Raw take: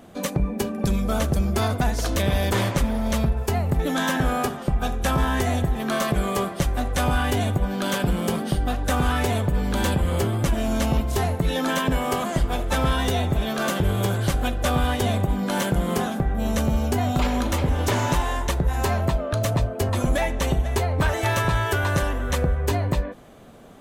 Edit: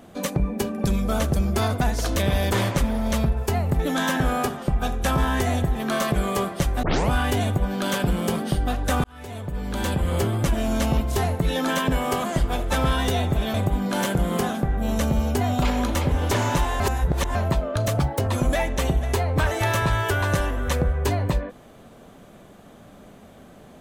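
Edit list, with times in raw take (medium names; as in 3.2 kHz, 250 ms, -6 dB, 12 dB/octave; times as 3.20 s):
6.83 s: tape start 0.27 s
9.04–10.17 s: fade in
13.54–15.11 s: delete
18.37–18.92 s: reverse
19.57–19.82 s: speed 128%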